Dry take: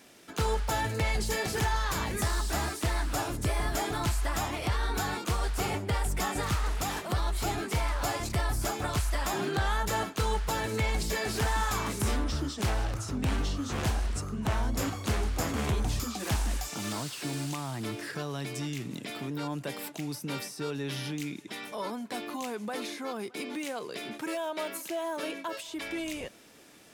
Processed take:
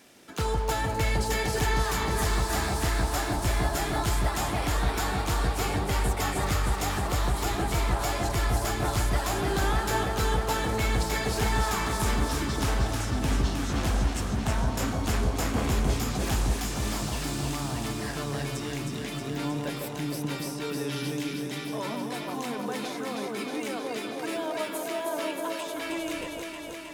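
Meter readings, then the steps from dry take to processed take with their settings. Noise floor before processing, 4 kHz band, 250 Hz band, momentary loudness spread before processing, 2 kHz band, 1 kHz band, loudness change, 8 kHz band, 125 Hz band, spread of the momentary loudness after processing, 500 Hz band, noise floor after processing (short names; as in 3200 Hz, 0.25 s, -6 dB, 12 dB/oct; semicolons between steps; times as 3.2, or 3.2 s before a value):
-45 dBFS, +3.0 dB, +3.5 dB, 7 LU, +3.0 dB, +3.5 dB, +3.0 dB, +3.0 dB, +3.5 dB, 6 LU, +3.5 dB, -36 dBFS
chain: echo with dull and thin repeats by turns 0.157 s, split 1100 Hz, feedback 86%, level -2.5 dB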